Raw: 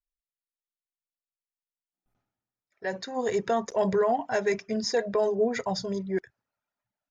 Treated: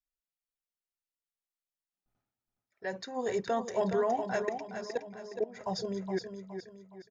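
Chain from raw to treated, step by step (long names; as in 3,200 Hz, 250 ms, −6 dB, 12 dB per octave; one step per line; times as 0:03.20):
0:04.42–0:05.61: output level in coarse steps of 22 dB
on a send: repeating echo 417 ms, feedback 38%, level −8 dB
on the sum: level −5 dB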